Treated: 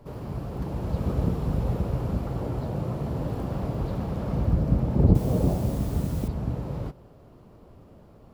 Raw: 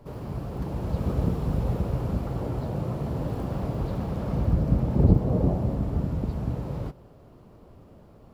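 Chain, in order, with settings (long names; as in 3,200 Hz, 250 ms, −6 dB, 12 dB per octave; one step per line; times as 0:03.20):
0:05.15–0:06.28: bit-depth reduction 8 bits, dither triangular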